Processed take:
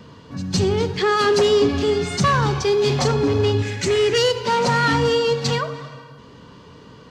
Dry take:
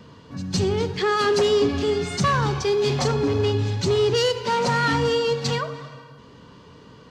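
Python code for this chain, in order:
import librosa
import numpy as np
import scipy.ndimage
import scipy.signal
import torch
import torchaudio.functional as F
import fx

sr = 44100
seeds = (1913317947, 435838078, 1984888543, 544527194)

y = fx.graphic_eq(x, sr, hz=(125, 1000, 2000, 4000, 8000), db=(-9, -7, 12, -6, 6), at=(3.62, 4.18))
y = F.gain(torch.from_numpy(y), 3.0).numpy()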